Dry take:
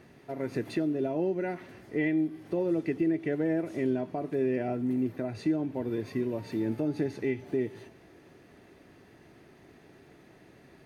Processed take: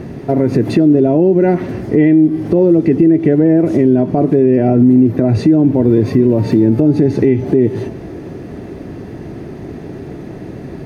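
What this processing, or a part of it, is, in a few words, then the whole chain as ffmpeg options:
mastering chain: -af "equalizer=frequency=5500:width_type=o:width=0.69:gain=3,acompressor=threshold=-33dB:ratio=2.5,tiltshelf=frequency=750:gain=8.5,alimiter=level_in=23.5dB:limit=-1dB:release=50:level=0:latency=1,volume=-1.5dB"

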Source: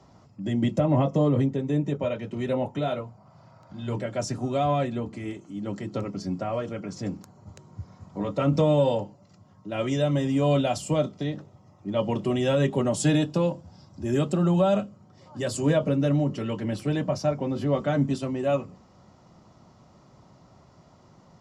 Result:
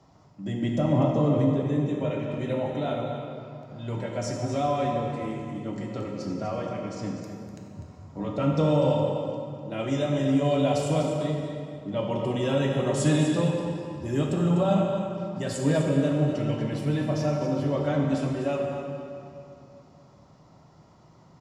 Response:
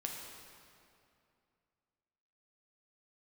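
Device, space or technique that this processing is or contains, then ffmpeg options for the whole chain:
cave: -filter_complex "[0:a]aecho=1:1:248:0.335[link_01];[1:a]atrim=start_sample=2205[link_02];[link_01][link_02]afir=irnorm=-1:irlink=0,volume=-1dB"

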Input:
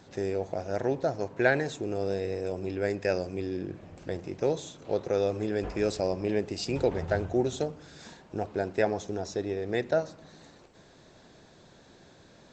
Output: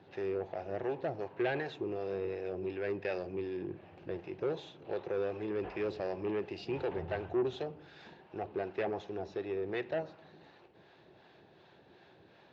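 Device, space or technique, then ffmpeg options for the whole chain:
guitar amplifier with harmonic tremolo: -filter_complex "[0:a]acrossover=split=630[link_01][link_02];[link_01]aeval=exprs='val(0)*(1-0.5/2+0.5/2*cos(2*PI*2.7*n/s))':channel_layout=same[link_03];[link_02]aeval=exprs='val(0)*(1-0.5/2-0.5/2*cos(2*PI*2.7*n/s))':channel_layout=same[link_04];[link_03][link_04]amix=inputs=2:normalize=0,asoftclip=type=tanh:threshold=-26dB,highpass=86,equalizer=frequency=240:width_type=q:width=4:gain=-5,equalizer=frequency=370:width_type=q:width=4:gain=6,equalizer=frequency=820:width_type=q:width=4:gain=6,equalizer=frequency=1700:width_type=q:width=4:gain=3,equalizer=frequency=2700:width_type=q:width=4:gain=6,lowpass=frequency=4000:width=0.5412,lowpass=frequency=4000:width=1.3066,volume=-4dB"

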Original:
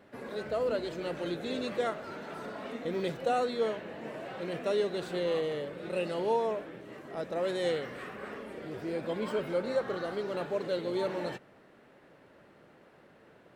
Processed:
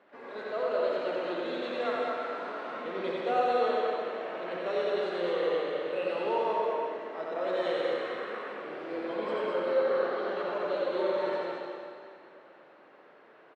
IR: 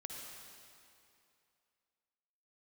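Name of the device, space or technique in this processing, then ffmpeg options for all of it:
station announcement: -filter_complex "[0:a]asettb=1/sr,asplit=3[link_01][link_02][link_03];[link_01]atrim=end=9.514[link_04];[link_02]atrim=start=9.51:end=10.2,asetpts=PTS-STARTPTS,afade=type=in:duration=0.004:curve=qsin,afade=type=out:start_time=0.686:duration=0.004:curve=qsin,lowpass=6100[link_05];[link_03]atrim=start=10.196[link_06];[link_04][link_05]acrossfade=duration=0.004:curve1=hsin:curve2=qsin[link_07];[link_07][link_06]acrossfade=duration=0.004:curve1=qsin:curve2=hsin,highpass=360,lowpass=3600,equalizer=frequency=1100:width_type=o:width=0.58:gain=4,aecho=1:1:90.38|215.7:0.708|0.631[link_08];[1:a]atrim=start_sample=2205[link_09];[link_08][link_09]afir=irnorm=-1:irlink=0,volume=2.5dB"

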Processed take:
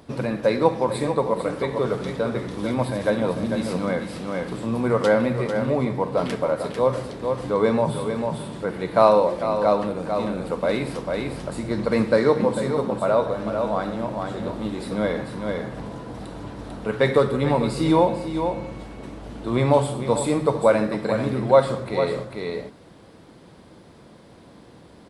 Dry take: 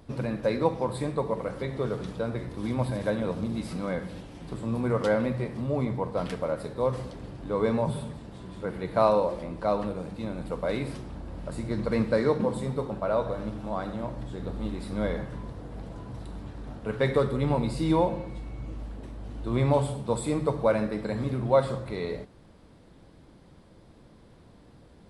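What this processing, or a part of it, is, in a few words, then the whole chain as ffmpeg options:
ducked delay: -filter_complex "[0:a]asplit=3[link_01][link_02][link_03];[link_02]adelay=446,volume=-2.5dB[link_04];[link_03]apad=whole_len=1126453[link_05];[link_04][link_05]sidechaincompress=threshold=-29dB:ratio=8:attack=16:release=772[link_06];[link_01][link_06]amix=inputs=2:normalize=0,highpass=frequency=190:poles=1,volume=7dB"

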